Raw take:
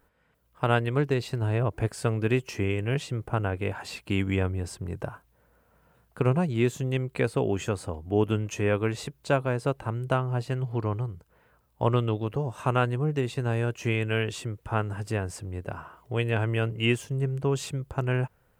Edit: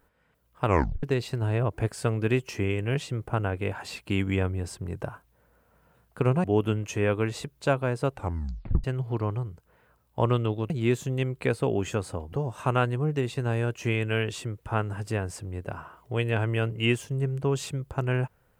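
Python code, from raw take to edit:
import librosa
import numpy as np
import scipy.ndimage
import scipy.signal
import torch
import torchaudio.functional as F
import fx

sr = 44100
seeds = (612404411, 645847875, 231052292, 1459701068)

y = fx.edit(x, sr, fx.tape_stop(start_s=0.65, length_s=0.38),
    fx.move(start_s=6.44, length_s=1.63, to_s=12.33),
    fx.tape_stop(start_s=9.78, length_s=0.69), tone=tone)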